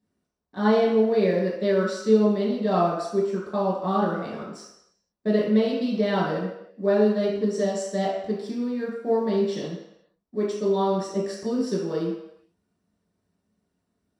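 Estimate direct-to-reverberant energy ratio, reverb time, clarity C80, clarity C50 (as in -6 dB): -7.0 dB, 0.85 s, 5.0 dB, 2.0 dB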